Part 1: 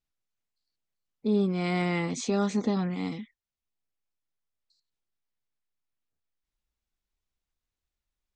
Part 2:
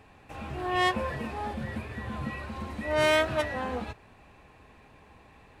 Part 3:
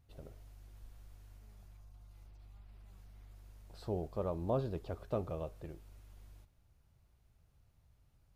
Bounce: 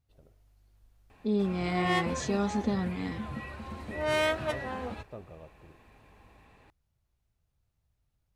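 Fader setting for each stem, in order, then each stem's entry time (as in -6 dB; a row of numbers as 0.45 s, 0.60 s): -3.0 dB, -4.0 dB, -8.5 dB; 0.00 s, 1.10 s, 0.00 s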